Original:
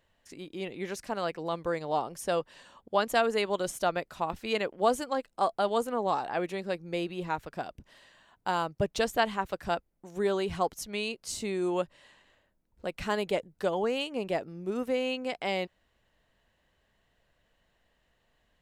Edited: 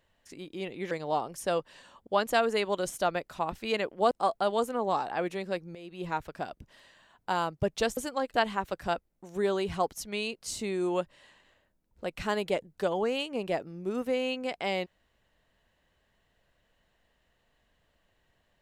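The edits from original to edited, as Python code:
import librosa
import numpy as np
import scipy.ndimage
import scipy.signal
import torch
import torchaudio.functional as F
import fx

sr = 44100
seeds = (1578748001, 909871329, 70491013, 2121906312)

y = fx.edit(x, sr, fx.cut(start_s=0.91, length_s=0.81),
    fx.move(start_s=4.92, length_s=0.37, to_s=9.15),
    fx.fade_in_from(start_s=6.93, length_s=0.3, curve='qua', floor_db=-16.5), tone=tone)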